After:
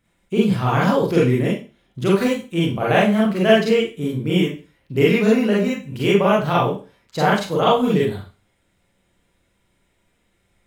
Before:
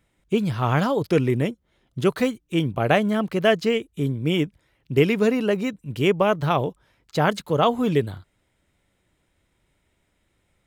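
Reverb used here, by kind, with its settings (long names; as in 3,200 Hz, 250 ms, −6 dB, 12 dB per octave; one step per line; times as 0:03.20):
four-comb reverb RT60 0.33 s, combs from 32 ms, DRR −6 dB
level −3 dB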